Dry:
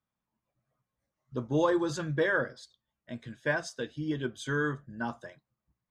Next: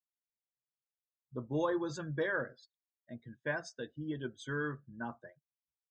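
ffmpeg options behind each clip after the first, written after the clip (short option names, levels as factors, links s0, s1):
-af "afftdn=nr=25:nf=-46,volume=0.473"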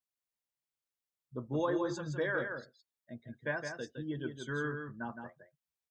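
-af "aecho=1:1:165:0.473"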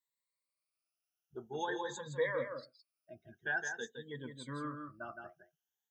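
-af "afftfilt=real='re*pow(10,21/40*sin(2*PI*(1*log(max(b,1)*sr/1024/100)/log(2)-(0.48)*(pts-256)/sr)))':imag='im*pow(10,21/40*sin(2*PI*(1*log(max(b,1)*sr/1024/100)/log(2)-(0.48)*(pts-256)/sr)))':win_size=1024:overlap=0.75,lowshelf=f=350:g=-9,volume=0.631"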